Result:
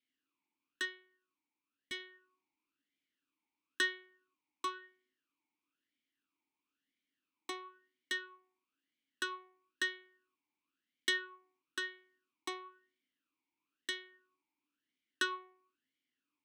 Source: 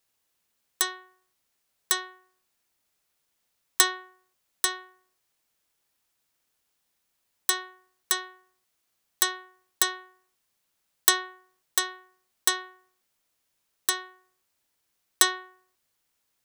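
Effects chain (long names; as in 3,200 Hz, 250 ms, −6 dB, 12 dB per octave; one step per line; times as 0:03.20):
0:00.85–0:02.00: tube saturation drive 23 dB, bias 0.55
formant filter swept between two vowels i-u 1 Hz
level +5.5 dB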